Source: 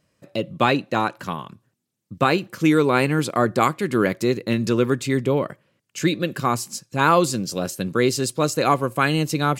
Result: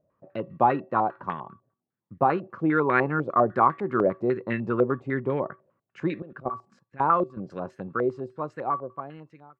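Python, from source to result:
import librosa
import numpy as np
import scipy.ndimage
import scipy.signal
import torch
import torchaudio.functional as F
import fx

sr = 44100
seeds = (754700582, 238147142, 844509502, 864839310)

y = fx.fade_out_tail(x, sr, length_s=2.59)
y = fx.level_steps(y, sr, step_db=19, at=(6.22, 7.37))
y = fx.comb_fb(y, sr, f0_hz=380.0, decay_s=0.32, harmonics='odd', damping=0.0, mix_pct=60)
y = fx.filter_held_lowpass(y, sr, hz=10.0, low_hz=620.0, high_hz=1800.0)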